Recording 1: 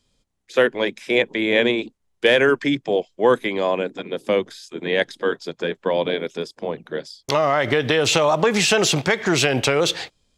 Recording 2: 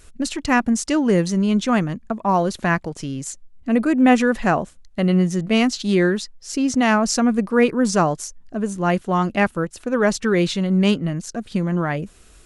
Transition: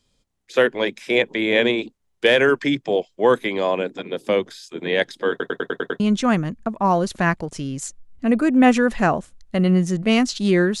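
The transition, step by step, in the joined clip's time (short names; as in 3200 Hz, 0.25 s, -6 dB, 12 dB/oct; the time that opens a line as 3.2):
recording 1
5.3 stutter in place 0.10 s, 7 plays
6 switch to recording 2 from 1.44 s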